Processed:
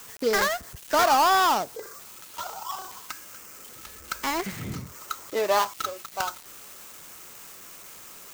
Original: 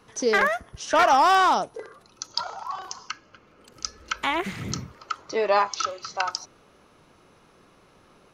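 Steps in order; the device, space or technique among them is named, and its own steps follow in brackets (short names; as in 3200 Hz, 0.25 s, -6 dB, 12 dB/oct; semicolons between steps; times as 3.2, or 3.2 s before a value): budget class-D amplifier (switching dead time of 0.13 ms; switching spikes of -27 dBFS); gain -1.5 dB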